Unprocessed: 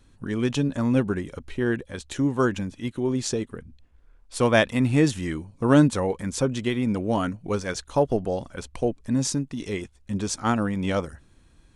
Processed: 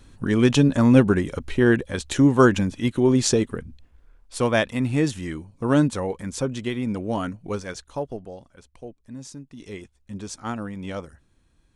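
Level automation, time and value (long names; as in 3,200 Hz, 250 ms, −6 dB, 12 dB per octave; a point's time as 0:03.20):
0:03.51 +7 dB
0:04.58 −2 dB
0:07.51 −2 dB
0:08.54 −14.5 dB
0:09.31 −14.5 dB
0:09.71 −7 dB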